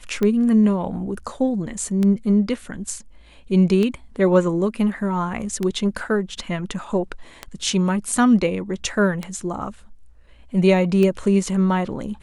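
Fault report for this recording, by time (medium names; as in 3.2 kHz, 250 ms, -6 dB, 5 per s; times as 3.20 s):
tick 33 1/3 rpm -11 dBFS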